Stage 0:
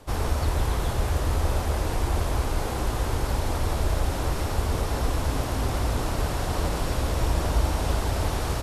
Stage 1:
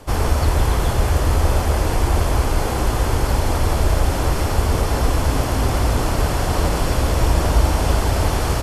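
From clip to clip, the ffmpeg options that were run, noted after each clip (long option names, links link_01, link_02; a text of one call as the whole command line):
ffmpeg -i in.wav -af "bandreject=frequency=3800:width=14,volume=7.5dB" out.wav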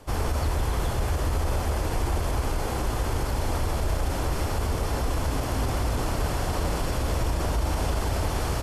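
ffmpeg -i in.wav -af "alimiter=limit=-10dB:level=0:latency=1:release=28,volume=-7dB" out.wav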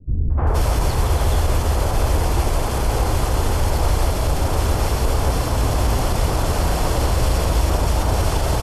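ffmpeg -i in.wav -filter_complex "[0:a]acrossover=split=260|1700[link_01][link_02][link_03];[link_02]adelay=300[link_04];[link_03]adelay=470[link_05];[link_01][link_04][link_05]amix=inputs=3:normalize=0,volume=8dB" out.wav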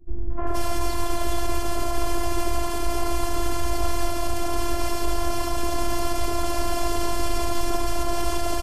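ffmpeg -i in.wav -af "afftfilt=real='hypot(re,im)*cos(PI*b)':imag='0':win_size=512:overlap=0.75" out.wav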